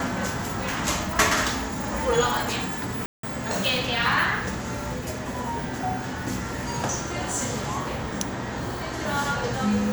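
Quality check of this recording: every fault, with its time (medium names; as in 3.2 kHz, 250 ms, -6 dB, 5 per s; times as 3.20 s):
3.06–3.23 s: dropout 173 ms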